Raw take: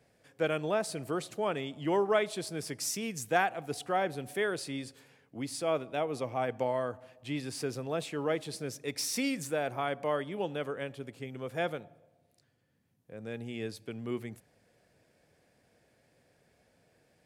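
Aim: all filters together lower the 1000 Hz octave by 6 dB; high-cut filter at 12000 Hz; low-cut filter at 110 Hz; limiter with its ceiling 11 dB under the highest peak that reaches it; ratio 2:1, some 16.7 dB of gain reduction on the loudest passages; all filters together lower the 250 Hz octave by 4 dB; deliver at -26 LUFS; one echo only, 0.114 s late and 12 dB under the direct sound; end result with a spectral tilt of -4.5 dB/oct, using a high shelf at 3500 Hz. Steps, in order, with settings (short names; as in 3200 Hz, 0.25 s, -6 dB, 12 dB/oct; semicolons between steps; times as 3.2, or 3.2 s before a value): HPF 110 Hz; LPF 12000 Hz; bell 250 Hz -4.5 dB; bell 1000 Hz -8 dB; high shelf 3500 Hz -8.5 dB; compressor 2:1, threshold -59 dBFS; limiter -46 dBFS; echo 0.114 s -12 dB; gain +29.5 dB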